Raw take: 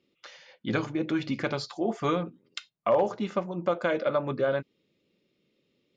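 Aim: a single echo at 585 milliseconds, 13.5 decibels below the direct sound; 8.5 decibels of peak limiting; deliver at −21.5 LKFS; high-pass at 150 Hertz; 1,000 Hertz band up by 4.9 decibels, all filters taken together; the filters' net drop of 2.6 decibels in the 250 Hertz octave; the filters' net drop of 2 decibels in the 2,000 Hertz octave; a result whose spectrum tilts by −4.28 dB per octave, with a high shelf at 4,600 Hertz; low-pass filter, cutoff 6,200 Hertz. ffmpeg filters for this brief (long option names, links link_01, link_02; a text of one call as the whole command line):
ffmpeg -i in.wav -af "highpass=150,lowpass=6200,equalizer=frequency=250:width_type=o:gain=-3.5,equalizer=frequency=1000:width_type=o:gain=8.5,equalizer=frequency=2000:width_type=o:gain=-8,highshelf=frequency=4600:gain=4,alimiter=limit=-19.5dB:level=0:latency=1,aecho=1:1:585:0.211,volume=10.5dB" out.wav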